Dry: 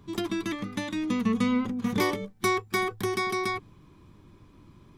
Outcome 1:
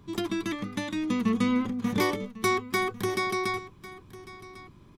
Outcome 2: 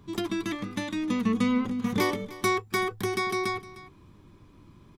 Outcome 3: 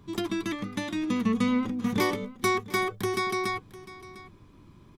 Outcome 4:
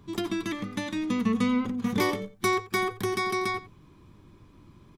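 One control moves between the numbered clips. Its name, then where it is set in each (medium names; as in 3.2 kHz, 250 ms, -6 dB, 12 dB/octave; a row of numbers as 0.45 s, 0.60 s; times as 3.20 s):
delay, time: 1099 ms, 306 ms, 702 ms, 89 ms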